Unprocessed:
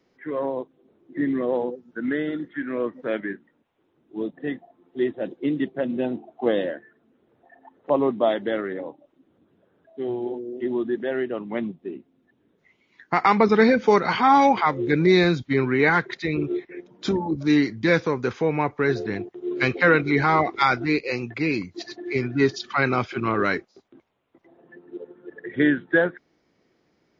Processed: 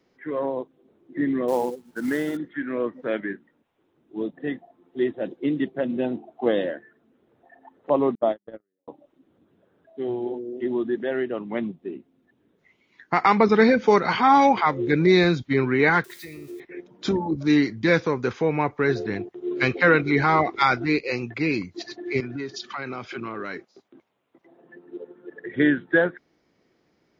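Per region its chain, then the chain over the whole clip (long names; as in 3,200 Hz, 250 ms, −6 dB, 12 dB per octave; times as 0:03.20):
0:01.48–0:02.37: variable-slope delta modulation 64 kbit/s + parametric band 880 Hz +7 dB 0.49 octaves + log-companded quantiser 6 bits
0:08.15–0:08.88: low-pass filter 1,100 Hz 6 dB per octave + noise gate −23 dBFS, range −51 dB + one half of a high-frequency compander decoder only
0:16.04–0:16.60: spike at every zero crossing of −28.5 dBFS + downward compressor 4 to 1, threshold −28 dBFS + tuned comb filter 87 Hz, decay 0.67 s, mix 70%
0:22.20–0:25.46: high-pass filter 130 Hz + downward compressor 5 to 1, threshold −29 dBFS
whole clip: no processing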